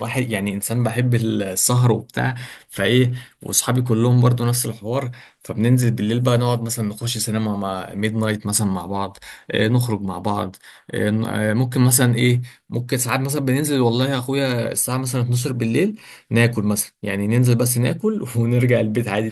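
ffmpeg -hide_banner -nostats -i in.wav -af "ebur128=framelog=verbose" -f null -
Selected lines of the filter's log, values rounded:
Integrated loudness:
  I:         -19.7 LUFS
  Threshold: -30.0 LUFS
Loudness range:
  LRA:         3.5 LU
  Threshold: -40.1 LUFS
  LRA low:   -22.2 LUFS
  LRA high:  -18.8 LUFS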